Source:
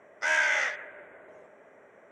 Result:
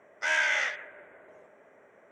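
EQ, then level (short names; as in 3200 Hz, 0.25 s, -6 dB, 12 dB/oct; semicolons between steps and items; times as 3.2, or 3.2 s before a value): dynamic EQ 3300 Hz, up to +5 dB, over -43 dBFS, Q 1.2; -2.5 dB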